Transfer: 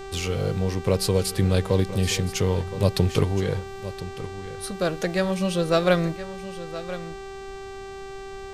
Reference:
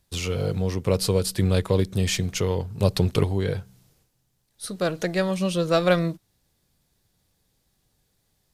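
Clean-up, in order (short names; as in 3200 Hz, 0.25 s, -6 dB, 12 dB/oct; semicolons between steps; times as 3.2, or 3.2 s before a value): de-hum 390 Hz, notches 22; noise print and reduce 30 dB; inverse comb 1.019 s -14 dB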